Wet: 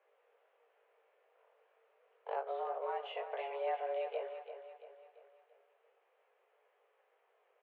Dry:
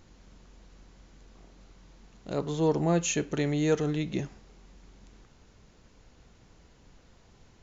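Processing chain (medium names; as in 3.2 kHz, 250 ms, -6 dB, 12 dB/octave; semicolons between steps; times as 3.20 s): gate -47 dBFS, range -13 dB; compression 6:1, threshold -37 dBFS, peak gain reduction 16 dB; chorus 0.3 Hz, delay 19 ms, depth 3.1 ms; feedback delay 339 ms, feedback 46%, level -10 dB; mistuned SSB +270 Hz 170–2600 Hz; trim +4 dB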